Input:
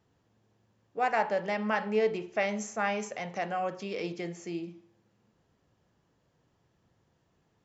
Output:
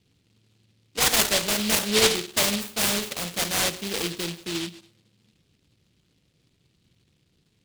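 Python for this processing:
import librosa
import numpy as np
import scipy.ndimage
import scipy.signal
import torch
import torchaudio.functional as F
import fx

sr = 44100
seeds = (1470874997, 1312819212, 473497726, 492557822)

p1 = fx.env_lowpass(x, sr, base_hz=490.0, full_db=-28.5)
p2 = p1 + fx.room_flutter(p1, sr, wall_m=9.3, rt60_s=0.25, dry=0)
p3 = fx.noise_mod_delay(p2, sr, seeds[0], noise_hz=3300.0, depth_ms=0.36)
y = p3 * 10.0 ** (6.0 / 20.0)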